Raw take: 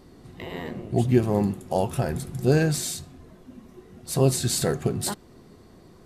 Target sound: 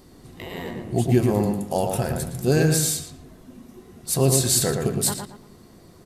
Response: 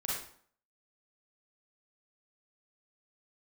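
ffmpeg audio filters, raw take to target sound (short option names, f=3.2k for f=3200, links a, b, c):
-filter_complex "[0:a]highshelf=f=5.3k:g=10,asplit=2[a][b];[b]adelay=114,lowpass=f=2.3k:p=1,volume=-4dB,asplit=2[c][d];[d]adelay=114,lowpass=f=2.3k:p=1,volume=0.33,asplit=2[e][f];[f]adelay=114,lowpass=f=2.3k:p=1,volume=0.33,asplit=2[g][h];[h]adelay=114,lowpass=f=2.3k:p=1,volume=0.33[i];[c][e][g][i]amix=inputs=4:normalize=0[j];[a][j]amix=inputs=2:normalize=0"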